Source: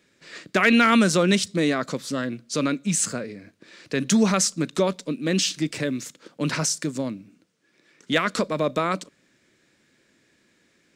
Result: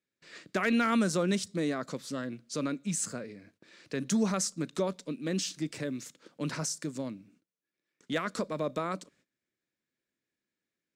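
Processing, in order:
noise gate −55 dBFS, range −18 dB
dynamic equaliser 2,800 Hz, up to −6 dB, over −37 dBFS, Q 1
level −8.5 dB

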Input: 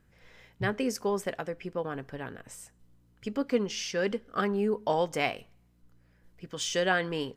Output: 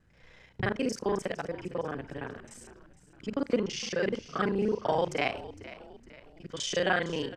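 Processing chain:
reversed piece by piece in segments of 33 ms
low-pass filter 7,500 Hz 12 dB per octave
on a send: echo with shifted repeats 459 ms, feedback 45%, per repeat −61 Hz, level −16 dB

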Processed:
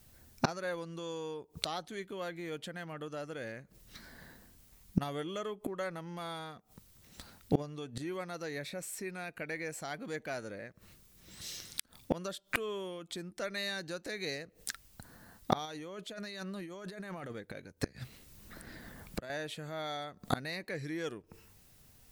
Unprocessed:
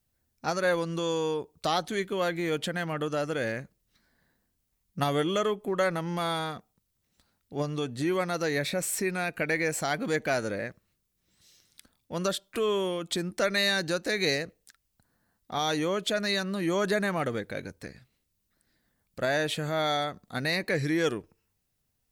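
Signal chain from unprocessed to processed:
0:15.65–0:17.33: compressor whose output falls as the input rises −32 dBFS, ratio −1
gate with flip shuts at −30 dBFS, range −28 dB
0:17.84–0:19.30: multiband upward and downward compressor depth 70%
level +16.5 dB

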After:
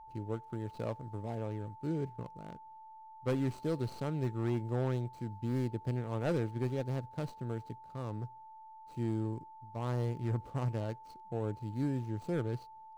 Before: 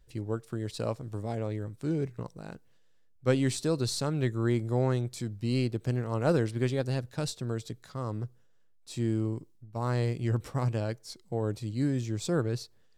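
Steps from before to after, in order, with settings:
running median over 25 samples
hard clipping −21.5 dBFS, distortion −20 dB
steady tone 880 Hz −45 dBFS
level −5 dB

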